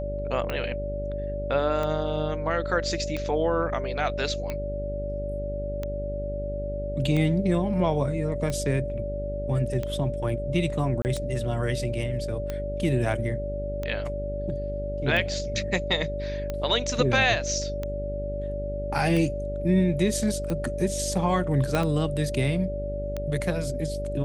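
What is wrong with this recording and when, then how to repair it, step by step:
mains buzz 50 Hz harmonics 13 −33 dBFS
scratch tick 45 rpm −17 dBFS
whistle 580 Hz −31 dBFS
0:11.02–0:11.05: drop-out 29 ms
0:21.75: click −11 dBFS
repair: click removal
hum removal 50 Hz, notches 13
notch filter 580 Hz, Q 30
repair the gap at 0:11.02, 29 ms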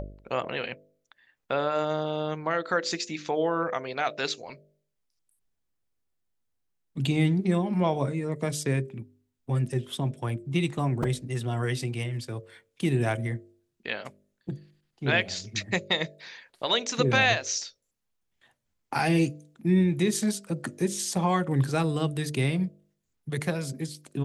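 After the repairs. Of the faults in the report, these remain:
0:21.75: click

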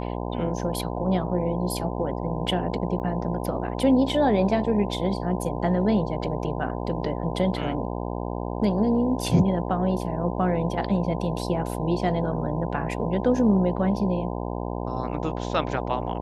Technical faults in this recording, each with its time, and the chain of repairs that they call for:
mains buzz 60 Hz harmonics 17 −30 dBFS
0:02.99–0:03.00: drop-out 8.9 ms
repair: hum removal 60 Hz, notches 17
repair the gap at 0:02.99, 8.9 ms

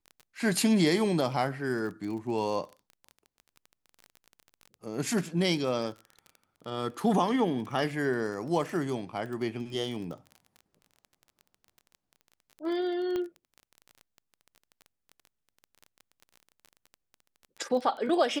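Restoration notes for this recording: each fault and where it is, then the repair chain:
surface crackle 22 per second −37 dBFS
0:13.16: click −21 dBFS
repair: click removal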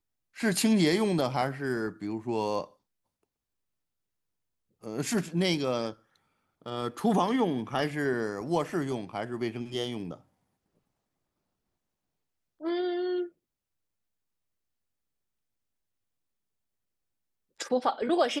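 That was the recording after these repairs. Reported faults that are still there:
none of them is left

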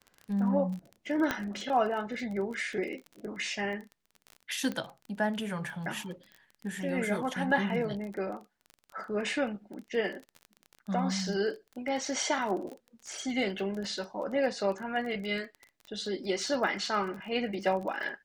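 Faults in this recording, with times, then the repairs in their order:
surface crackle 26 per second −37 dBFS
0:01.31: click −14 dBFS
0:04.72: click −22 dBFS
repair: click removal

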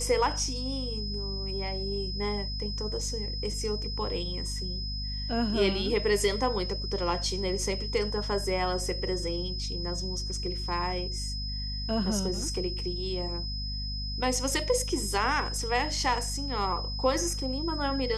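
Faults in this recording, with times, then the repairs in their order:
mains hum 50 Hz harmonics 5 −35 dBFS
whistle 5,100 Hz −36 dBFS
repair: notch filter 5,100 Hz, Q 30
hum removal 50 Hz, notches 5

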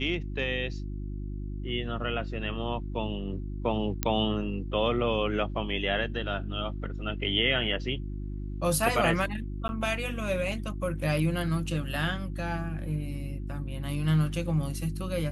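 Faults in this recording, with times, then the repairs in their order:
mains hum 50 Hz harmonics 7 −35 dBFS
0:04.03: click −8 dBFS
0:09.68–0:09.69: drop-out 10 ms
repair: click removal
hum removal 50 Hz, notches 7
repair the gap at 0:09.68, 10 ms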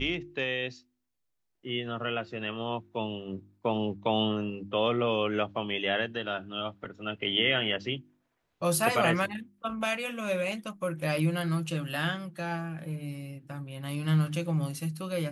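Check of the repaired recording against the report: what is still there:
none of them is left

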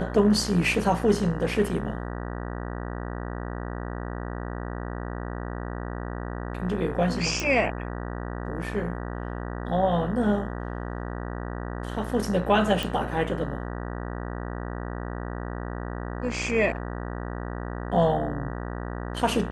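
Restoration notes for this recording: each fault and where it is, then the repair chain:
mains buzz 60 Hz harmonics 32 −33 dBFS
0:07.40: click
0:12.83: click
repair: click removal
hum removal 60 Hz, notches 32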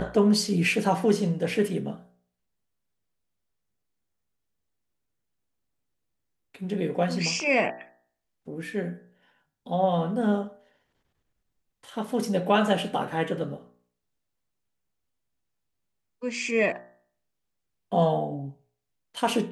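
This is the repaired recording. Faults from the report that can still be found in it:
none of them is left

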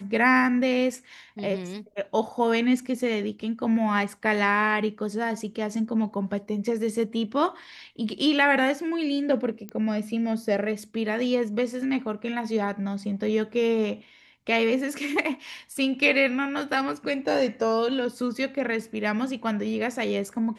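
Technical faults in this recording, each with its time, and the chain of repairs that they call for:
0:09.69: click −20 dBFS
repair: click removal

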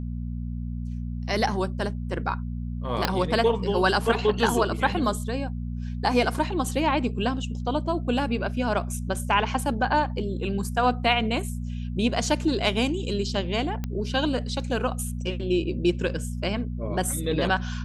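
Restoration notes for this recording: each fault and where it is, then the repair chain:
mains hum 60 Hz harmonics 4 −31 dBFS
0:03.05: click −7 dBFS
0:13.84: click −17 dBFS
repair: click removal
hum removal 60 Hz, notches 4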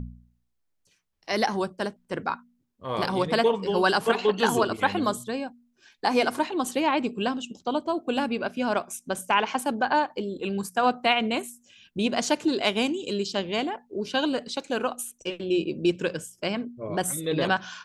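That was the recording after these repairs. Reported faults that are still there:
0:03.05: click

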